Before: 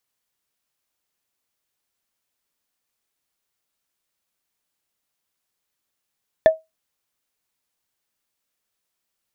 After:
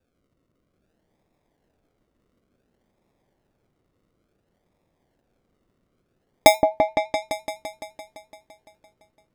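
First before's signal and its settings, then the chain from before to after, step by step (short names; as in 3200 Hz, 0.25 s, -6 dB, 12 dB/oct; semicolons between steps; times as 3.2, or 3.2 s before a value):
wood hit, lowest mode 639 Hz, decay 0.19 s, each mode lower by 11 dB, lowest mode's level -4.5 dB
in parallel at 0 dB: limiter -15 dBFS; on the sum: decimation with a swept rate 42×, swing 60% 0.57 Hz; repeats that get brighter 0.17 s, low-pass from 750 Hz, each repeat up 1 oct, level -3 dB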